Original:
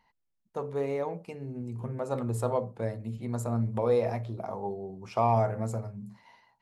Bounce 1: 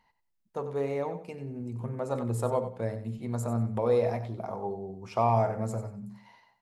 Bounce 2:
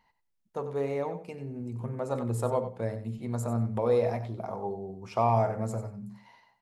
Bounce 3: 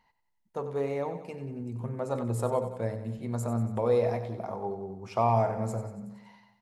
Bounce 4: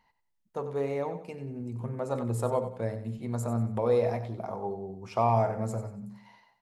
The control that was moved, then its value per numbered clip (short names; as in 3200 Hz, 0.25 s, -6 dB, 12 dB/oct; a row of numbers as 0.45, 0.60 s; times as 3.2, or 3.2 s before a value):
feedback echo, feedback: 23, 15, 57, 34%